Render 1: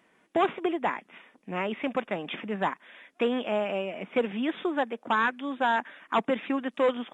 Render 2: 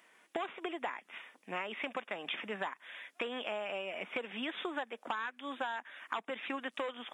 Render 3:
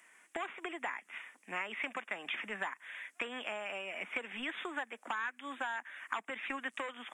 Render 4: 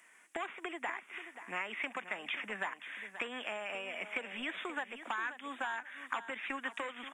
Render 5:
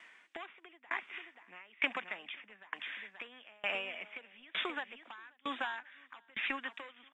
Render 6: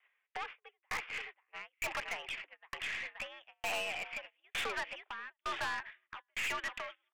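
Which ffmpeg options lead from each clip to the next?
ffmpeg -i in.wav -af "highpass=frequency=1000:poles=1,highshelf=frequency=6000:gain=4.5,acompressor=threshold=-37dB:ratio=12,volume=3dB" out.wav
ffmpeg -i in.wav -filter_complex "[0:a]equalizer=frequency=125:width_type=o:width=1:gain=-6,equalizer=frequency=500:width_type=o:width=1:gain=-5,equalizer=frequency=2000:width_type=o:width=1:gain=6,equalizer=frequency=4000:width_type=o:width=1:gain=-8,equalizer=frequency=8000:width_type=o:width=1:gain=11,acrossover=split=320|1100|1300[link_01][link_02][link_03][link_04];[link_01]aeval=exprs='clip(val(0),-1,0.00398)':channel_layout=same[link_05];[link_05][link_02][link_03][link_04]amix=inputs=4:normalize=0,volume=-1dB" out.wav
ffmpeg -i in.wav -af "aecho=1:1:531|1062|1593:0.251|0.0553|0.0122" out.wav
ffmpeg -i in.wav -af "lowpass=frequency=3800:width_type=q:width=2.1,aeval=exprs='val(0)*pow(10,-30*if(lt(mod(1.1*n/s,1),2*abs(1.1)/1000),1-mod(1.1*n/s,1)/(2*abs(1.1)/1000),(mod(1.1*n/s,1)-2*abs(1.1)/1000)/(1-2*abs(1.1)/1000))/20)':channel_layout=same,volume=5.5dB" out.wav
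ffmpeg -i in.wav -af "agate=range=-26dB:threshold=-53dB:ratio=16:detection=peak,highpass=frequency=350:width_type=q:width=0.5412,highpass=frequency=350:width_type=q:width=1.307,lowpass=frequency=3200:width_type=q:width=0.5176,lowpass=frequency=3200:width_type=q:width=0.7071,lowpass=frequency=3200:width_type=q:width=1.932,afreqshift=86,aeval=exprs='(tanh(112*val(0)+0.3)-tanh(0.3))/112':channel_layout=same,volume=8dB" out.wav

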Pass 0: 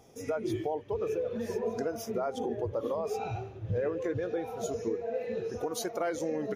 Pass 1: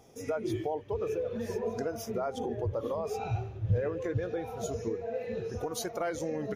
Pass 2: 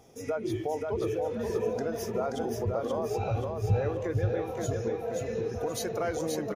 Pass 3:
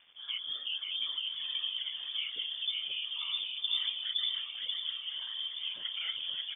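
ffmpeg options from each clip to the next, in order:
ffmpeg -i in.wav -af "asubboost=boost=3:cutoff=150" out.wav
ffmpeg -i in.wav -af "aecho=1:1:529|1058|1587|2116|2645:0.668|0.254|0.0965|0.0367|0.0139,volume=1dB" out.wav
ffmpeg -i in.wav -af "afftfilt=real='hypot(re,im)*cos(2*PI*random(0))':imag='hypot(re,im)*sin(2*PI*random(1))':win_size=512:overlap=0.75,acrusher=bits=9:mix=0:aa=0.000001,lowpass=frequency=3100:width_type=q:width=0.5098,lowpass=frequency=3100:width_type=q:width=0.6013,lowpass=frequency=3100:width_type=q:width=0.9,lowpass=frequency=3100:width_type=q:width=2.563,afreqshift=-3600" out.wav

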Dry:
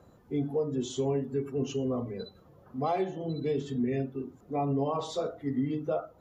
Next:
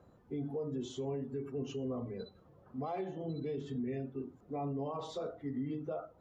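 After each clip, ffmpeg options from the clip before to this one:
ffmpeg -i in.wav -af "alimiter=level_in=2dB:limit=-24dB:level=0:latency=1:release=53,volume=-2dB,highshelf=frequency=5200:gain=-10.5,volume=-4.5dB" out.wav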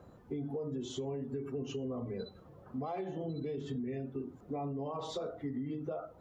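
ffmpeg -i in.wav -af "acompressor=threshold=-41dB:ratio=6,volume=6dB" out.wav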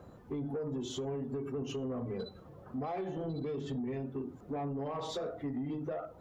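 ffmpeg -i in.wav -af "asoftclip=type=tanh:threshold=-33dB,volume=3dB" out.wav

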